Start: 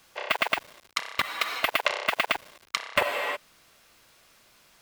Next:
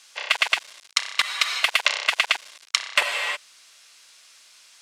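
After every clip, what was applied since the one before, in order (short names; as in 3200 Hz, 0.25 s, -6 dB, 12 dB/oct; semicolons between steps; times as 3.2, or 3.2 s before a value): weighting filter ITU-R 468; gain -1 dB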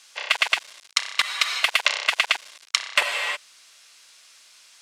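nothing audible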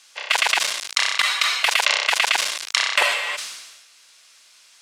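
sustainer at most 48 dB/s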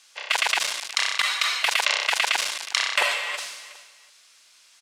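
feedback echo 0.367 s, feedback 25%, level -17 dB; gain -3.5 dB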